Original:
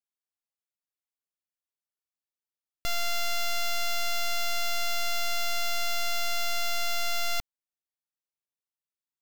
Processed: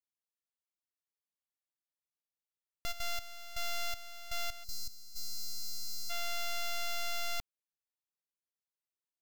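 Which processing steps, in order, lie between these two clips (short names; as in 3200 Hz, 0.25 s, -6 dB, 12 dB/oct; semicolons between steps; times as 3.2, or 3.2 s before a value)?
2.91–5.15 step gate ".xx..x.x." 80 bpm -12 dB; 4.64–6.1 spectral gain 320–3800 Hz -25 dB; gain -7 dB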